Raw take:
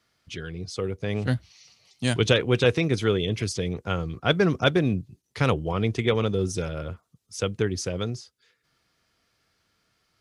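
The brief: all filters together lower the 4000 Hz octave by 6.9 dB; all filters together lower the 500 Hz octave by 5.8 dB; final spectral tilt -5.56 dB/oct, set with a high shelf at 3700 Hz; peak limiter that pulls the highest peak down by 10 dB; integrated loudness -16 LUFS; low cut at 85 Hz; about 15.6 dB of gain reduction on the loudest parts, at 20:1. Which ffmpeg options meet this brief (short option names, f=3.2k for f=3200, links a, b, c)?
-af "highpass=85,equalizer=f=500:t=o:g=-7,highshelf=f=3.7k:g=-4,equalizer=f=4k:t=o:g=-6.5,acompressor=threshold=-34dB:ratio=20,volume=26dB,alimiter=limit=-4.5dB:level=0:latency=1"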